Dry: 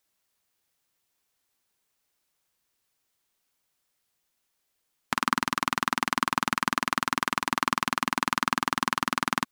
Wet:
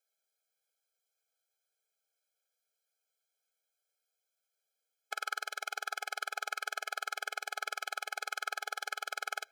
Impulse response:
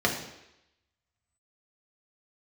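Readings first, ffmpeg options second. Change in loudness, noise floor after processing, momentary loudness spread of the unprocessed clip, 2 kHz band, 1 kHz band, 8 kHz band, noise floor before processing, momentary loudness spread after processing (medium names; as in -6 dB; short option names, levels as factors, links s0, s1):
-10.5 dB, under -85 dBFS, 1 LU, -8.0 dB, -13.0 dB, -9.0 dB, -77 dBFS, 1 LU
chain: -filter_complex "[0:a]asplit=2[s0][s1];[1:a]atrim=start_sample=2205,asetrate=41013,aresample=44100[s2];[s1][s2]afir=irnorm=-1:irlink=0,volume=0.0188[s3];[s0][s3]amix=inputs=2:normalize=0,afftfilt=real='re*eq(mod(floor(b*sr/1024/430),2),1)':imag='im*eq(mod(floor(b*sr/1024/430),2),1)':win_size=1024:overlap=0.75,volume=0.501"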